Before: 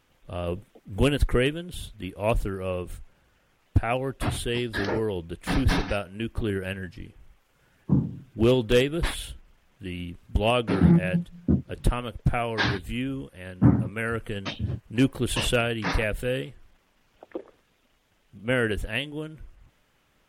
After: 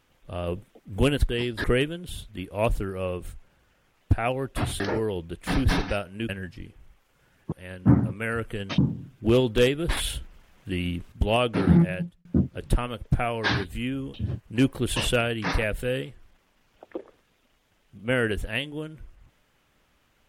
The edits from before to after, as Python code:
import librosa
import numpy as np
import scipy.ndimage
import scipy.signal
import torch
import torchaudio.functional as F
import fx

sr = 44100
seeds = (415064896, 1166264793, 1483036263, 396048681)

y = fx.edit(x, sr, fx.move(start_s=4.45, length_s=0.35, to_s=1.29),
    fx.cut(start_s=6.29, length_s=0.4),
    fx.clip_gain(start_s=9.11, length_s=1.15, db=6.0),
    fx.fade_out_span(start_s=10.93, length_s=0.46),
    fx.move(start_s=13.28, length_s=1.26, to_s=7.92), tone=tone)